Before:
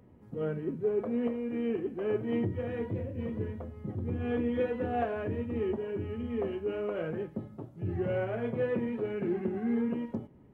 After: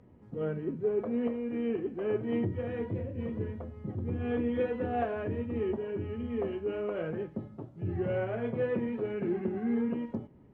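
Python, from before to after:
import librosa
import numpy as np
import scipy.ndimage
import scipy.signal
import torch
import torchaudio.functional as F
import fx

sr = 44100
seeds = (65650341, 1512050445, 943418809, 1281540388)

y = fx.air_absorb(x, sr, metres=60.0)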